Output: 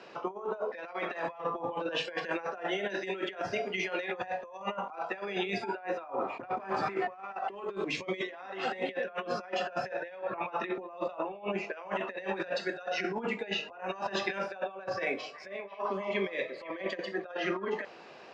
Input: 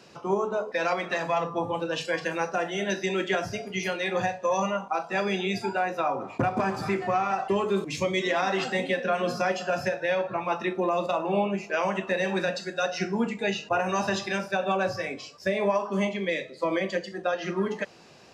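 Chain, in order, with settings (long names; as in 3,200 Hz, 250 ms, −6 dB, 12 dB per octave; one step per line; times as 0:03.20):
high-pass filter 140 Hz 6 dB per octave
bass and treble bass −13 dB, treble −10 dB
compressor whose output falls as the input rises −34 dBFS, ratio −0.5
high-frequency loss of the air 92 metres
0:15.00–0:17.24: echo through a band-pass that steps 168 ms, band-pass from 850 Hz, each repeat 0.7 octaves, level −9 dB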